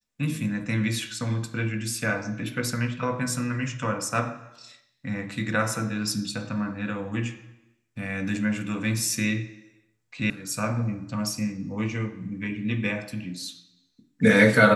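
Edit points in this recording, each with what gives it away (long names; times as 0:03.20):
0:10.30: cut off before it has died away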